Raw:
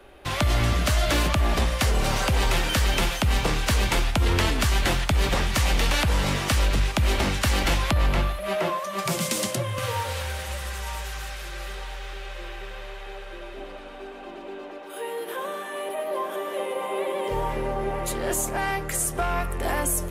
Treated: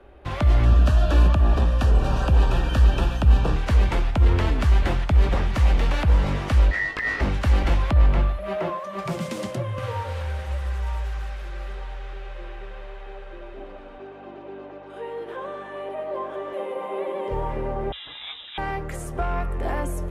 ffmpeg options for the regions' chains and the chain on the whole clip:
ffmpeg -i in.wav -filter_complex "[0:a]asettb=1/sr,asplit=3[link_01][link_02][link_03];[link_01]atrim=end=0.654[link_04];[link_02]atrim=start=0.65:end=3.56,asetpts=PTS-STARTPTS,afade=type=in:duration=0.004:curve=qsin,afade=type=out:start_time=2.906:duration=0.004:curve=qsin,aeval=exprs='val(0)+0.0316*(sin(2*PI*60*n/s)+sin(2*PI*2*60*n/s)/2+sin(2*PI*3*60*n/s)/3+sin(2*PI*4*60*n/s)/4+sin(2*PI*5*60*n/s)/5)':channel_layout=same,asuperstop=centerf=2100:order=8:qfactor=4.7[link_05];[link_03]atrim=start=3.556[link_06];[link_04][link_05]acrossfade=duration=0.004:curve1=hsin:curve2=qsin[link_07];[link_07][link_06]acrossfade=duration=0.004:curve1=qsin:curve2=hsin,asettb=1/sr,asplit=3[link_08][link_09][link_10];[link_08]atrim=end=6.714[link_11];[link_09]atrim=start=6.71:end=7.21,asetpts=PTS-STARTPTS,afade=type=in:duration=0.004:curve=qsin,afade=type=out:start_time=0.496:duration=0.004:curve=qsin,aeval=exprs='val(0)*sin(2*PI*1900*n/s)':channel_layout=same,adynamicsmooth=sensitivity=7:basefreq=6800,asplit=2[link_12][link_13];[link_13]adelay=19,volume=-3dB[link_14];[link_12][link_14]amix=inputs=2:normalize=0,atrim=end_sample=22050[link_15];[link_10]atrim=start=7.206[link_16];[link_11][link_15]acrossfade=duration=0.004:curve1=hsin:curve2=qsin[link_17];[link_17][link_16]acrossfade=duration=0.004:curve1=qsin:curve2=hsin,asettb=1/sr,asplit=3[link_18][link_19][link_20];[link_18]atrim=end=13.984[link_21];[link_19]atrim=start=13.98:end=16.53,asetpts=PTS-STARTPTS,afade=type=in:duration=0.004:curve=qsin,afade=type=out:start_time=2.546:duration=0.004:curve=qsin,aeval=exprs='val(0)+0.00708*(sin(2*PI*50*n/s)+sin(2*PI*2*50*n/s)/2+sin(2*PI*3*50*n/s)/3+sin(2*PI*4*50*n/s)/4+sin(2*PI*5*50*n/s)/5)':channel_layout=same,highpass=180,lowpass=7500[link_22];[link_20]atrim=start=16.526[link_23];[link_21][link_22]acrossfade=duration=0.004:curve1=hsin:curve2=qsin[link_24];[link_24][link_23]acrossfade=duration=0.004:curve1=qsin:curve2=hsin,asettb=1/sr,asplit=3[link_25][link_26][link_27];[link_25]atrim=end=17.924[link_28];[link_26]atrim=start=17.92:end=18.58,asetpts=PTS-STARTPTS,afade=type=in:duration=0.004:curve=qsin,afade=type=out:start_time=0.656:duration=0.004:curve=qsin,highpass=100,lowpass=frequency=3400:width_type=q:width=0.5098,lowpass=frequency=3400:width_type=q:width=0.6013,lowpass=frequency=3400:width_type=q:width=0.9,lowpass=frequency=3400:width_type=q:width=2.563,afreqshift=-4000[link_29];[link_27]atrim=start=18.576[link_30];[link_28][link_29]acrossfade=duration=0.004:curve1=hsin:curve2=qsin[link_31];[link_31][link_30]acrossfade=duration=0.004:curve1=qsin:curve2=hsin,lowpass=frequency=1200:poles=1,equalizer=frequency=61:width_type=o:width=0.73:gain=8" out.wav

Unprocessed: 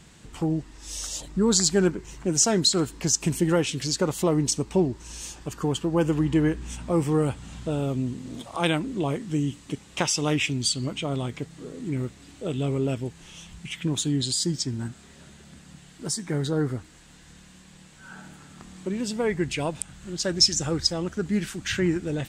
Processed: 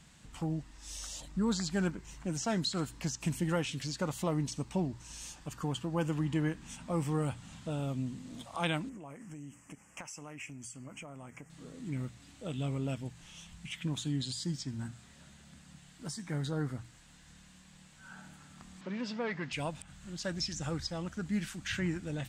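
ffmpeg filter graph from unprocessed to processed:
ffmpeg -i in.wav -filter_complex "[0:a]asettb=1/sr,asplit=3[link_01][link_02][link_03];[link_01]atrim=end=8.894[link_04];[link_02]atrim=start=8.89:end=11.5,asetpts=PTS-STARTPTS,afade=type=in:duration=0.004:curve=qsin,afade=type=out:start_time=2.606:duration=0.004:curve=qsin,asuperstop=centerf=3900:order=4:qfactor=1.1,lowshelf=frequency=170:gain=-10.5,acompressor=threshold=-34dB:ratio=5:attack=3.2:release=140:knee=1:detection=peak[link_05];[link_03]atrim=start=11.496[link_06];[link_04][link_05]acrossfade=duration=0.004:curve1=hsin:curve2=qsin[link_07];[link_07][link_06]acrossfade=duration=0.004:curve1=qsin:curve2=hsin,asettb=1/sr,asplit=3[link_08][link_09][link_10];[link_08]atrim=end=18.814[link_11];[link_09]atrim=start=18.81:end=19.53,asetpts=PTS-STARTPTS,afade=type=in:duration=0.004:curve=qsin,afade=type=out:start_time=0.716:duration=0.004:curve=qsin,asplit=2[link_12][link_13];[link_13]highpass=frequency=720:poles=1,volume=16dB,asoftclip=type=tanh:threshold=-14dB[link_14];[link_12][link_14]amix=inputs=2:normalize=0,lowpass=frequency=1300:poles=1,volume=-6dB,highpass=140,equalizer=frequency=340:width_type=q:width=4:gain=-4,equalizer=frequency=770:width_type=q:width=4:gain=-5,equalizer=frequency=5000:width_type=q:width=4:gain=4,lowpass=frequency=6100:width=0.5412,lowpass=frequency=6100:width=1.3066[link_15];[link_10]atrim=start=19.526[link_16];[link_11][link_15]acrossfade=duration=0.004:curve1=hsin:curve2=qsin[link_17];[link_17][link_16]acrossfade=duration=0.004:curve1=qsin:curve2=hsin,acrossover=split=3500[link_18][link_19];[link_19]acompressor=threshold=-34dB:ratio=4:attack=1:release=60[link_20];[link_18][link_20]amix=inputs=2:normalize=0,equalizer=frequency=390:width_type=o:width=0.61:gain=-10,bandreject=frequency=60:width_type=h:width=6,bandreject=frequency=120:width_type=h:width=6,volume=-6.5dB" out.wav

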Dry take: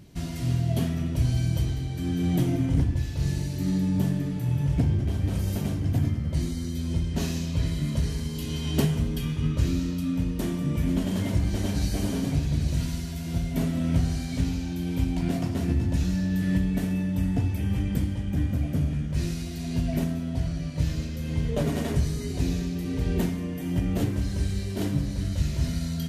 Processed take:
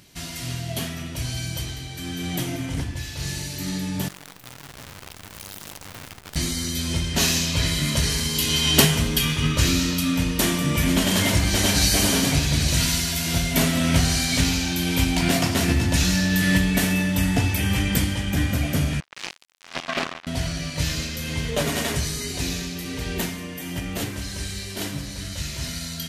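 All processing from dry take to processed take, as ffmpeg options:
ffmpeg -i in.wav -filter_complex "[0:a]asettb=1/sr,asplit=3[link_01][link_02][link_03];[link_01]atrim=end=4.084[link_04];[link_02]atrim=start=4.08:end=6.36,asetpts=PTS-STARTPTS,afade=type=in:duration=0.004:curve=qsin,afade=type=out:start_time=2.276:duration=0.004:curve=qsin,acrusher=bits=5:dc=4:mix=0:aa=0.000001,aeval=exprs='(tanh(100*val(0)+0.55)-tanh(0.55))/100':channel_layout=same[link_05];[link_03]atrim=start=6.356[link_06];[link_04][link_05]acrossfade=duration=0.004:curve1=hsin:curve2=qsin[link_07];[link_07][link_06]acrossfade=duration=0.004:curve1=qsin:curve2=hsin,asettb=1/sr,asplit=3[link_08][link_09][link_10];[link_08]atrim=end=19.004[link_11];[link_09]atrim=start=19:end=20.27,asetpts=PTS-STARTPTS,afade=type=in:duration=0.004:curve=qsin,afade=type=out:start_time=1.266:duration=0.004:curve=qsin,highpass=340,lowpass=2900,acrusher=bits=4:mix=0:aa=0.5[link_12];[link_10]atrim=start=20.266[link_13];[link_11][link_12]acrossfade=duration=0.004:curve1=hsin:curve2=qsin[link_14];[link_14][link_13]acrossfade=duration=0.004:curve1=qsin:curve2=hsin,dynaudnorm=framelen=580:gausssize=21:maxgain=11.5dB,tiltshelf=frequency=720:gain=-8.5,volume=1.5dB" out.wav

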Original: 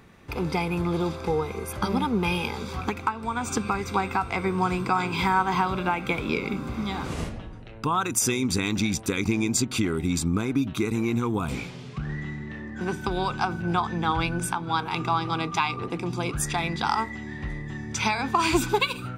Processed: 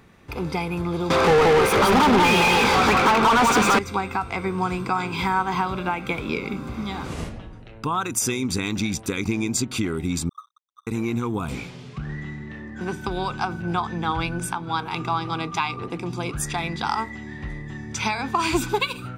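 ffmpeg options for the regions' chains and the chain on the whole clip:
ffmpeg -i in.wav -filter_complex "[0:a]asettb=1/sr,asplit=3[link_01][link_02][link_03];[link_01]atrim=end=1.104[link_04];[link_02]atrim=start=1.1:end=3.79,asetpts=PTS-STARTPTS,afade=type=in:duration=0.004:curve=qsin,afade=type=out:start_time=2.686:duration=0.004:curve=qsin,aecho=1:1:178:0.708,atrim=end_sample=118629,asplit=2[link_05][link_06];[link_06]highpass=frequency=720:poles=1,volume=36dB,asoftclip=type=tanh:threshold=-9dB[link_07];[link_05][link_07]amix=inputs=2:normalize=0,lowpass=frequency=2300:poles=1,volume=-6dB[link_08];[link_03]atrim=start=3.786[link_09];[link_04][link_08]acrossfade=duration=0.004:curve1=hsin:curve2=qsin[link_10];[link_10][link_09]acrossfade=duration=0.004:curve1=qsin:curve2=hsin,asettb=1/sr,asplit=3[link_11][link_12][link_13];[link_11]atrim=end=10.294[link_14];[link_12]atrim=start=10.29:end=10.87,asetpts=PTS-STARTPTS,afade=type=in:duration=0.004:curve=qsin,afade=type=out:start_time=0.576:duration=0.004:curve=qsin,asuperpass=centerf=1200:order=20:qfactor=7.5,aeval=exprs='sgn(val(0))*max(abs(val(0))-0.00188,0)':channel_layout=same[link_15];[link_13]atrim=start=10.866[link_16];[link_14][link_15]acrossfade=duration=0.004:curve1=hsin:curve2=qsin[link_17];[link_17][link_16]acrossfade=duration=0.004:curve1=qsin:curve2=hsin" out.wav

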